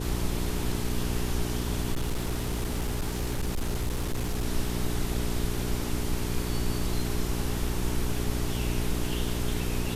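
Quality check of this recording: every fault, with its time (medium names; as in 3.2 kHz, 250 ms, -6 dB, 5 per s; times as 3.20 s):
hum 60 Hz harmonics 7 -32 dBFS
1.92–4.45 s: clipped -24.5 dBFS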